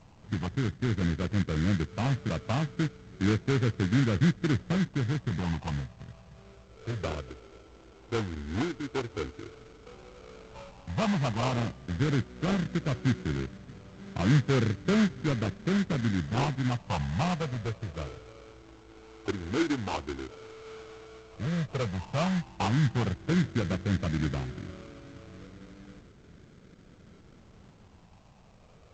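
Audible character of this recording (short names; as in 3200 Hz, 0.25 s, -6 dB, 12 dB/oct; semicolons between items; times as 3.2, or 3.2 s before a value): phasing stages 6, 0.089 Hz, lowest notch 160–1200 Hz; aliases and images of a low sample rate 1800 Hz, jitter 20%; G.722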